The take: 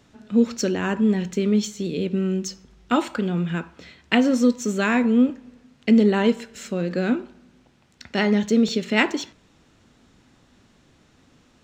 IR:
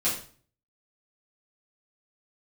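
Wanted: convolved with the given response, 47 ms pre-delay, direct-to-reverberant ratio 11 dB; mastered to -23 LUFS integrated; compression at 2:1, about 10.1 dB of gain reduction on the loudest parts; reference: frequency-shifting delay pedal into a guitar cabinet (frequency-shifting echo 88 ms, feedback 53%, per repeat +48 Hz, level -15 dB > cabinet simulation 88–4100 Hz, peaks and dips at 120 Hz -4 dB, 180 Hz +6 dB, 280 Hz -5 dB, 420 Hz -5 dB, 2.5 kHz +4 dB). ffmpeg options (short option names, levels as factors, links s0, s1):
-filter_complex "[0:a]acompressor=threshold=0.0282:ratio=2,asplit=2[s0][s1];[1:a]atrim=start_sample=2205,adelay=47[s2];[s1][s2]afir=irnorm=-1:irlink=0,volume=0.0944[s3];[s0][s3]amix=inputs=2:normalize=0,asplit=6[s4][s5][s6][s7][s8][s9];[s5]adelay=88,afreqshift=48,volume=0.178[s10];[s6]adelay=176,afreqshift=96,volume=0.0944[s11];[s7]adelay=264,afreqshift=144,volume=0.0501[s12];[s8]adelay=352,afreqshift=192,volume=0.0266[s13];[s9]adelay=440,afreqshift=240,volume=0.014[s14];[s4][s10][s11][s12][s13][s14]amix=inputs=6:normalize=0,highpass=88,equalizer=f=120:t=q:w=4:g=-4,equalizer=f=180:t=q:w=4:g=6,equalizer=f=280:t=q:w=4:g=-5,equalizer=f=420:t=q:w=4:g=-5,equalizer=f=2500:t=q:w=4:g=4,lowpass=f=4100:w=0.5412,lowpass=f=4100:w=1.3066,volume=2.11"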